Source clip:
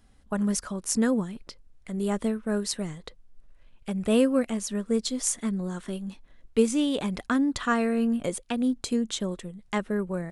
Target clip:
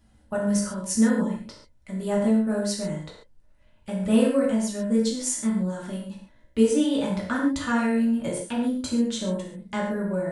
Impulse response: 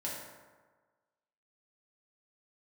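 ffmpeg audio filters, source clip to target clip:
-filter_complex "[0:a]equalizer=frequency=77:width_type=o:width=0.78:gain=8.5[link_01];[1:a]atrim=start_sample=2205,afade=type=out:start_time=0.2:duration=0.01,atrim=end_sample=9261[link_02];[link_01][link_02]afir=irnorm=-1:irlink=0"

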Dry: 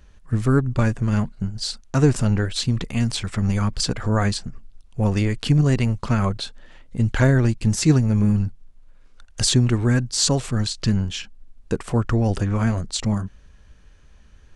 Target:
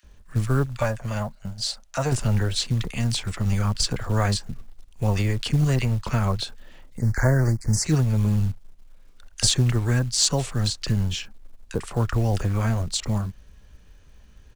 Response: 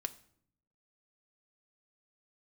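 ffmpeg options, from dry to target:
-filter_complex "[0:a]asettb=1/sr,asplit=3[link_01][link_02][link_03];[link_01]atrim=end=0.624[link_04];[link_02]atrim=start=0.62:end=2.09,asetpts=PTS-STARTPTS,afade=type=in:duration=0.004:curve=qsin,afade=type=out:start_time=1.466:duration=0.004:curve=qsin,lowshelf=frequency=470:width_type=q:width=3:gain=-6.5[link_05];[link_03]atrim=start=2.086[link_06];[link_04][link_05]acrossfade=duration=0.004:curve1=hsin:curve2=qsin[link_07];[link_07][link_06]acrossfade=duration=0.004:curve1=qsin:curve2=hsin,acrossover=split=160|430|5400[link_08][link_09][link_10][link_11];[link_09]acompressor=threshold=-36dB:ratio=4[link_12];[link_08][link_12][link_10][link_11]amix=inputs=4:normalize=0,acrossover=split=1500[link_13][link_14];[link_13]adelay=30[link_15];[link_15][link_14]amix=inputs=2:normalize=0,acrusher=bits=7:mode=log:mix=0:aa=0.000001,asplit=3[link_16][link_17][link_18];[link_16]afade=type=out:start_time=6.96:duration=0.02[link_19];[link_17]asuperstop=centerf=3100:order=8:qfactor=1.2,afade=type=in:start_time=6.96:duration=0.02,afade=type=out:start_time=7.84:duration=0.02[link_20];[link_18]afade=type=in:start_time=7.84:duration=0.02[link_21];[link_19][link_20][link_21]amix=inputs=3:normalize=0"

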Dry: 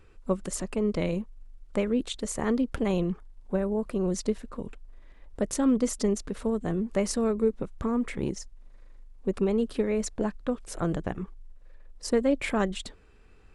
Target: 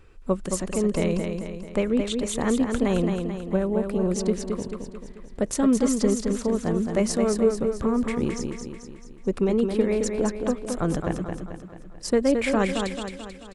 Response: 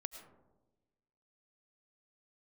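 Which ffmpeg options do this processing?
-af "aecho=1:1:219|438|657|876|1095|1314:0.531|0.271|0.138|0.0704|0.0359|0.0183,volume=3dB"

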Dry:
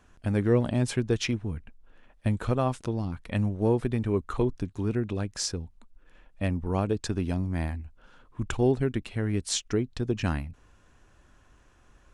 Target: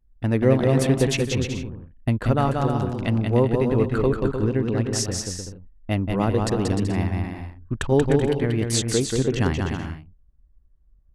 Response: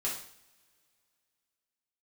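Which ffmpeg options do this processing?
-af "anlmdn=0.251,aecho=1:1:200|330|414.5|469.4|505.1:0.631|0.398|0.251|0.158|0.1,asetrate=48000,aresample=44100,volume=4.5dB"

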